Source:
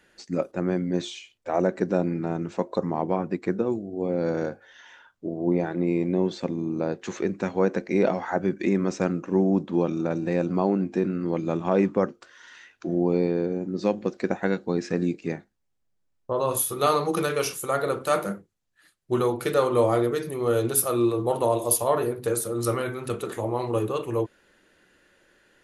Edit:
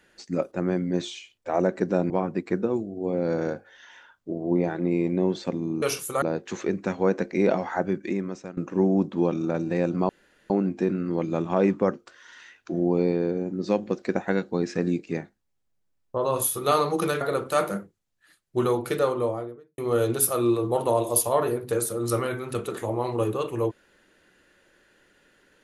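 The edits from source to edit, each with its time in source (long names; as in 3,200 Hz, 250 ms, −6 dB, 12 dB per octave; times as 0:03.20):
0:02.10–0:03.06: remove
0:08.33–0:09.13: fade out, to −20 dB
0:10.65: splice in room tone 0.41 s
0:17.36–0:17.76: move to 0:06.78
0:19.34–0:20.33: fade out and dull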